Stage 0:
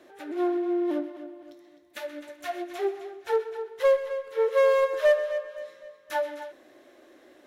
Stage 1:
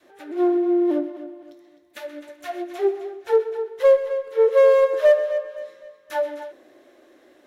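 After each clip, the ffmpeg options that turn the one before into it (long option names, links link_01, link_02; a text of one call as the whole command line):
ffmpeg -i in.wav -af "adynamicequalizer=threshold=0.0141:dfrequency=420:dqfactor=0.89:tfrequency=420:tqfactor=0.89:attack=5:release=100:ratio=0.375:range=4:mode=boostabove:tftype=bell" out.wav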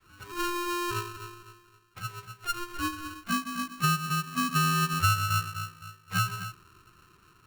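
ffmpeg -i in.wav -af "acompressor=threshold=-20dB:ratio=6,bandpass=frequency=730:width_type=q:width=1.7:csg=0,aeval=exprs='val(0)*sgn(sin(2*PI*700*n/s))':channel_layout=same" out.wav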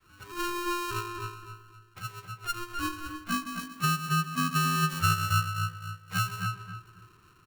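ffmpeg -i in.wav -filter_complex "[0:a]asplit=2[link_01][link_02];[link_02]adelay=275,lowpass=frequency=1800:poles=1,volume=-5dB,asplit=2[link_03][link_04];[link_04]adelay=275,lowpass=frequency=1800:poles=1,volume=0.25,asplit=2[link_05][link_06];[link_06]adelay=275,lowpass=frequency=1800:poles=1,volume=0.25[link_07];[link_01][link_03][link_05][link_07]amix=inputs=4:normalize=0,volume=-1.5dB" out.wav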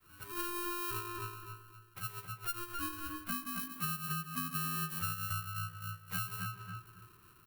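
ffmpeg -i in.wav -af "acompressor=threshold=-34dB:ratio=5,aexciter=amount=4.5:drive=4:freq=9500,volume=-3.5dB" out.wav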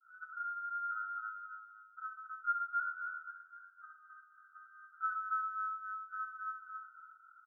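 ffmpeg -i in.wav -filter_complex "[0:a]asuperpass=centerf=1400:order=12:qfactor=6.8,asplit=2[link_01][link_02];[link_02]aecho=0:1:64.14|105:0.447|0.447[link_03];[link_01][link_03]amix=inputs=2:normalize=0,volume=9dB" out.wav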